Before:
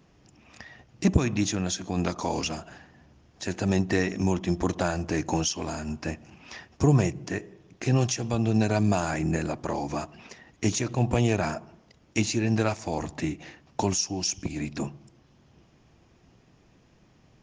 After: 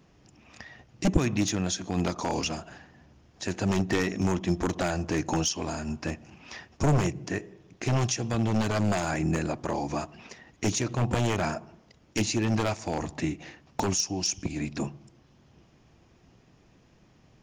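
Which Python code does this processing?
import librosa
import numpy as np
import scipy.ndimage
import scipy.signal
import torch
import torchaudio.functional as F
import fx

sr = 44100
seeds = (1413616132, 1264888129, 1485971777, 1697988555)

y = np.minimum(x, 2.0 * 10.0 ** (-18.0 / 20.0) - x)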